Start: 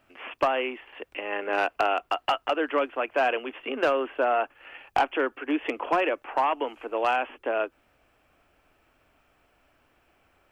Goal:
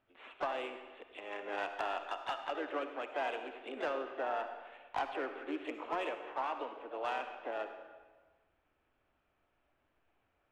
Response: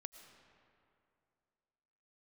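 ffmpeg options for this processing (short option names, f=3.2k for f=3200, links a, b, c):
-filter_complex "[0:a]asplit=2[a][b];[b]asetrate=55563,aresample=44100,atempo=0.793701,volume=-7dB[c];[a][c]amix=inputs=2:normalize=0,adynamicsmooth=sensitivity=2.5:basefreq=4k[d];[1:a]atrim=start_sample=2205,asetrate=83790,aresample=44100[e];[d][e]afir=irnorm=-1:irlink=0,volume=-2dB"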